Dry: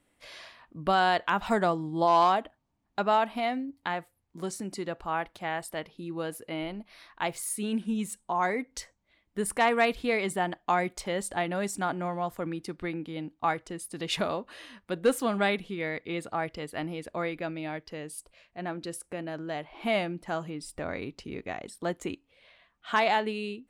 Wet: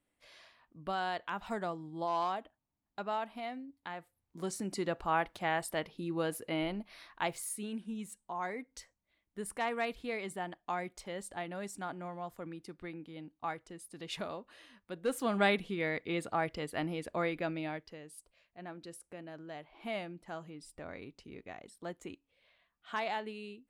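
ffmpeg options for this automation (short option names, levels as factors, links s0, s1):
-af "volume=2.82,afade=t=in:st=3.94:d=0.92:silence=0.266073,afade=t=out:st=6.8:d=0.94:silence=0.298538,afade=t=in:st=15.05:d=0.4:silence=0.354813,afade=t=out:st=17.57:d=0.42:silence=0.334965"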